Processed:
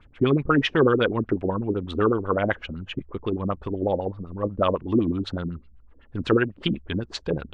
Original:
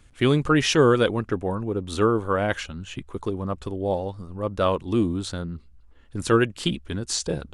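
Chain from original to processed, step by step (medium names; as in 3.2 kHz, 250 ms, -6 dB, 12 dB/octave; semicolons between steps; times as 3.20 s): LFO low-pass sine 8 Hz 250–3200 Hz; compression 1.5:1, threshold -21 dBFS, peak gain reduction 4.5 dB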